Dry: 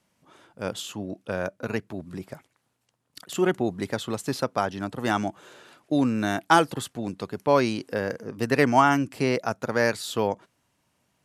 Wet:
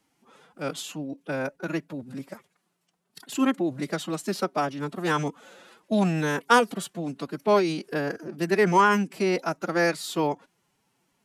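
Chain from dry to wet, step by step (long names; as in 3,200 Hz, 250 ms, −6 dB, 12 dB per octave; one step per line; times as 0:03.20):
phase-vocoder pitch shift with formants kept +6.5 semitones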